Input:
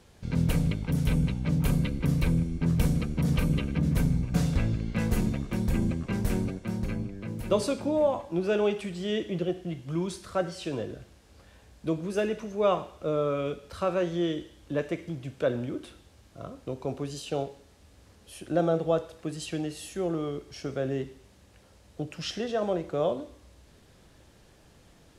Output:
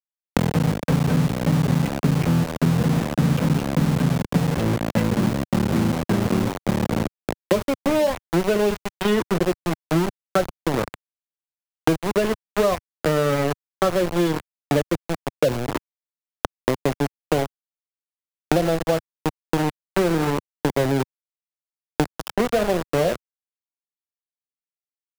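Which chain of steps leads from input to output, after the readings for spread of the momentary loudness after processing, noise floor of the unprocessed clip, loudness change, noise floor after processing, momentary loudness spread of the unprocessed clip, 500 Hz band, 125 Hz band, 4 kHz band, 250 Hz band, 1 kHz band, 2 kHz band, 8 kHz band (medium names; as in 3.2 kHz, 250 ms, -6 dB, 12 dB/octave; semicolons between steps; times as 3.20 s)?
6 LU, -58 dBFS, +7.0 dB, under -85 dBFS, 11 LU, +6.5 dB, +6.0 dB, +7.5 dB, +7.5 dB, +10.0 dB, +10.0 dB, +8.5 dB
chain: high-pass 99 Hz 24 dB/octave; loudest bins only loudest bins 16; level rider gain up to 14.5 dB; small samples zeroed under -16 dBFS; three bands compressed up and down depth 100%; trim -5 dB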